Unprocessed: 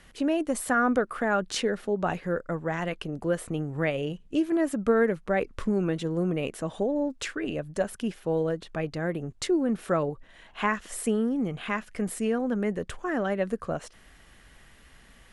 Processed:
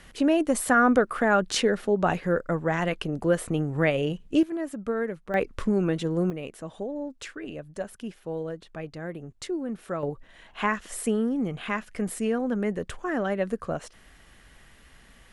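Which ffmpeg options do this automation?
-af "asetnsamples=n=441:p=0,asendcmd='4.43 volume volume -6dB;5.34 volume volume 2dB;6.3 volume volume -6dB;10.03 volume volume 0.5dB',volume=4dB"

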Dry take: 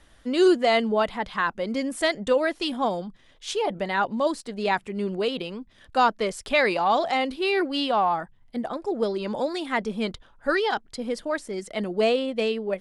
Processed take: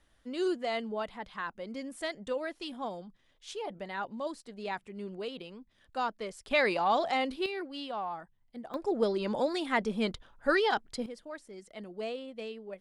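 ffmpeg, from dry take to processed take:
-af "asetnsamples=n=441:p=0,asendcmd='6.51 volume volume -5.5dB;7.46 volume volume -14dB;8.74 volume volume -3dB;11.06 volume volume -15.5dB',volume=-12.5dB"

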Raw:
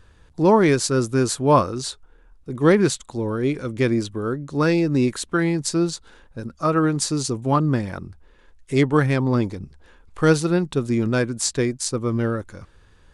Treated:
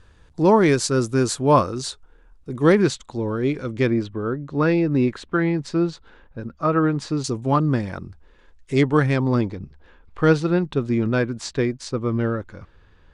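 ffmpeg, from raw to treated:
-af "asetnsamples=n=441:p=0,asendcmd='2.82 lowpass f 5700;3.87 lowpass f 2900;7.24 lowpass f 7300;9.41 lowpass f 3700',lowpass=9.8k"

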